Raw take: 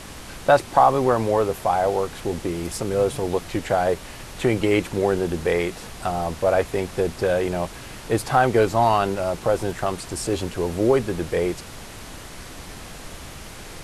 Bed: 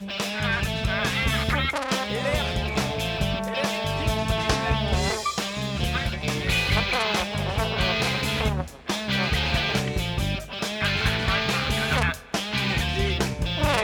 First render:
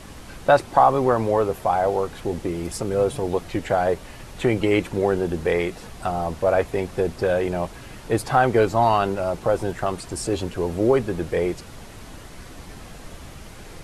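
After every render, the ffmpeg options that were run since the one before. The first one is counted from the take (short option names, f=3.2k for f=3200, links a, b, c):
-af "afftdn=nr=6:nf=-39"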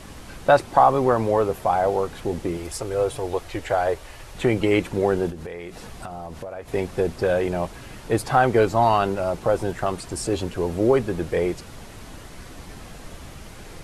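-filter_complex "[0:a]asettb=1/sr,asplit=3[a][b][c];[a]atrim=end=2.574[d];[b]atrim=start=2.57:end=4.35,asetpts=PTS-STARTPTS,afade=t=in:d=0.004:c=qsin,afade=t=out:st=1.776:d=0.004:c=qsin,equalizer=f=200:w=1.5:g=-13.5[e];[c]atrim=start=4.346[f];[d][e]acrossfade=d=0.004:c1=hsin:c2=qsin[g];[g][f]acrossfade=d=0.004:c1=qsin:c2=hsin,asettb=1/sr,asplit=3[h][i][j];[h]atrim=end=5.304[k];[i]atrim=start=5.3:end=6.68,asetpts=PTS-STARTPTS,afade=t=in:d=0.004:c=qsin,afade=t=out:st=1.376:d=0.004:c=qsin,acompressor=threshold=-31dB:ratio=8:attack=3.2:release=140:knee=1:detection=peak[l];[j]atrim=start=6.676[m];[k][l]acrossfade=d=0.004:c1=hsin:c2=qsin[n];[n][m]acrossfade=d=0.004:c1=qsin:c2=hsin"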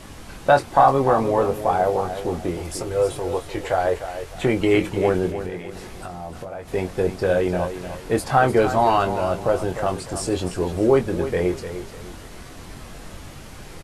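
-filter_complex "[0:a]asplit=2[a][b];[b]adelay=22,volume=-7dB[c];[a][c]amix=inputs=2:normalize=0,aecho=1:1:301|602|903:0.299|0.0955|0.0306"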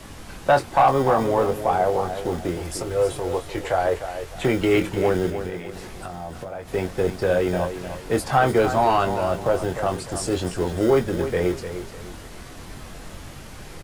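-filter_complex "[0:a]acrossover=split=250|470|5800[a][b][c][d];[a]acrusher=samples=26:mix=1:aa=0.000001[e];[e][b][c][d]amix=inputs=4:normalize=0,asoftclip=type=tanh:threshold=-7.5dB"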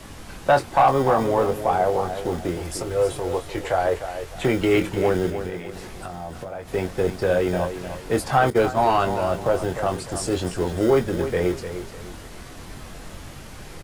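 -filter_complex "[0:a]asettb=1/sr,asplit=3[a][b][c];[a]atrim=end=8.504[d];[b]atrim=start=8.5:end=8.95,asetpts=PTS-STARTPTS,afade=t=in:d=0.004:c=qsin,afade=t=out:st=0.446:d=0.004:c=qsin,agate=range=-33dB:threshold=-19dB:ratio=3:release=100:detection=peak[e];[c]atrim=start=8.946[f];[d][e]acrossfade=d=0.004:c1=hsin:c2=qsin[g];[g][f]acrossfade=d=0.004:c1=qsin:c2=hsin"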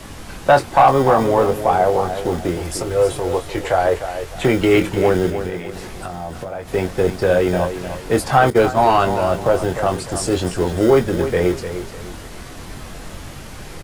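-af "volume=5dB"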